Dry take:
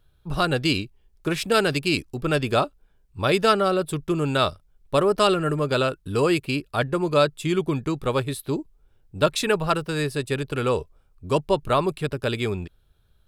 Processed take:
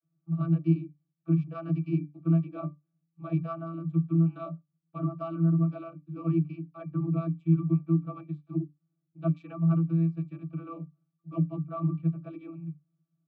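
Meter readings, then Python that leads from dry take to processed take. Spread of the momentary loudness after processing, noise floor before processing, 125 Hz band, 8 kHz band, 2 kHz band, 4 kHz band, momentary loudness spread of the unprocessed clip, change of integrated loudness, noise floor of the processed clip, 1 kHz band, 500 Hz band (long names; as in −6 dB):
16 LU, −62 dBFS, +1.5 dB, below −40 dB, below −25 dB, below −35 dB, 8 LU, −6.0 dB, −82 dBFS, −17.5 dB, −17.5 dB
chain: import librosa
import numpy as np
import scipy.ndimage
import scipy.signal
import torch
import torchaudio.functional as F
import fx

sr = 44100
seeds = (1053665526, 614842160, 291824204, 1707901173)

y = fx.vocoder(x, sr, bands=32, carrier='saw', carrier_hz=165.0)
y = fx.octave_resonator(y, sr, note='D', decay_s=0.18)
y = y * 10.0 ** (5.0 / 20.0)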